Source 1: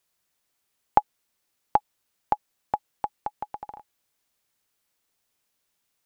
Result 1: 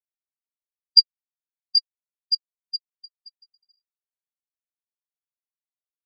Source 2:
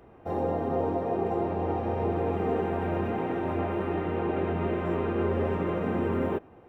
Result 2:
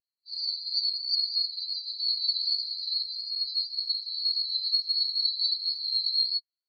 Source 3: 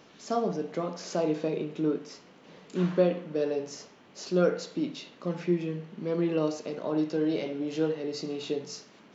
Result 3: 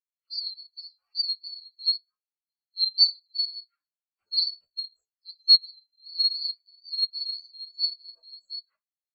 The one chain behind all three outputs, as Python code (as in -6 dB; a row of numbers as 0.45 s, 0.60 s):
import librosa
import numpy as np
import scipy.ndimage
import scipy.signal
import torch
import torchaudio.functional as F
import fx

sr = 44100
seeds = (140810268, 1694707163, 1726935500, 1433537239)

y = fx.band_swap(x, sr, width_hz=4000)
y = fx.chorus_voices(y, sr, voices=4, hz=0.25, base_ms=13, depth_ms=3.5, mix_pct=50)
y = fx.spectral_expand(y, sr, expansion=2.5)
y = y * 10.0 ** (-30 / 20.0) / np.sqrt(np.mean(np.square(y)))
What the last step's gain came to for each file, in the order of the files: +6.0 dB, +1.5 dB, +6.5 dB